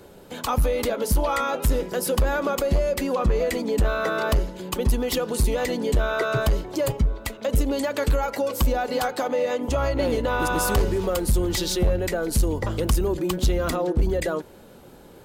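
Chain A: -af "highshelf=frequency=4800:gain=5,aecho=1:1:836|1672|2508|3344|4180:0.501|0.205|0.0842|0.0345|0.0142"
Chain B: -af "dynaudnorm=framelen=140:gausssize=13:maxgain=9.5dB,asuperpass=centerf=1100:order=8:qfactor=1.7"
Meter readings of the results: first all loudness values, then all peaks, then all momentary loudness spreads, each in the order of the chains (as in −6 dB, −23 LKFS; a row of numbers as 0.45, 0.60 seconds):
−23.0, −26.5 LKFS; −9.0, −8.0 dBFS; 3, 15 LU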